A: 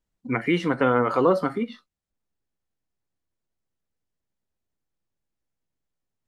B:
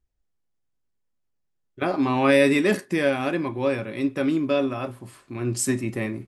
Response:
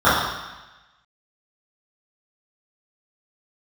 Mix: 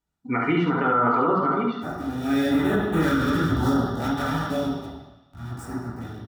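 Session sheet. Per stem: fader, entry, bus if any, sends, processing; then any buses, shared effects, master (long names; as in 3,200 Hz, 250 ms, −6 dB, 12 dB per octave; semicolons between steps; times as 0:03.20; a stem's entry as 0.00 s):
−0.5 dB, 0.00 s, send −24 dB, echo send −3.5 dB, treble cut that deepens with the level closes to 2,600 Hz, closed at −17.5 dBFS
0:02.08 −21 dB → 0:02.85 −9.5 dB → 0:04.17 −9.5 dB → 0:04.91 −21.5 dB, 0.00 s, send −9 dB, no echo send, hold until the input has moved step −21 dBFS; parametric band 1,000 Hz −5.5 dB 0.34 octaves; notch on a step sequencer 2 Hz 340–5,000 Hz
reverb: on, RT60 1.1 s, pre-delay 3 ms
echo: single-tap delay 71 ms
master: notch comb filter 530 Hz; brickwall limiter −12.5 dBFS, peak gain reduction 7.5 dB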